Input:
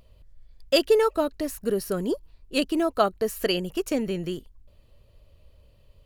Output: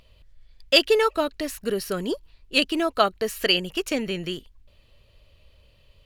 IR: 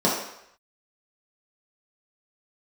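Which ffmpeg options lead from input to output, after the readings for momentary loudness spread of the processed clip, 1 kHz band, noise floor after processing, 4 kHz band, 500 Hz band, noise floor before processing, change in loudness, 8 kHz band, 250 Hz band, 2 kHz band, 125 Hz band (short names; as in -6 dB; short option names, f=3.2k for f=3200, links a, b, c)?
11 LU, +2.5 dB, -58 dBFS, +8.0 dB, -0.5 dB, -57 dBFS, +2.0 dB, +2.0 dB, -1.0 dB, +8.0 dB, -1.5 dB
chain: -af "equalizer=f=2.9k:t=o:w=2.3:g=10.5,volume=-1.5dB"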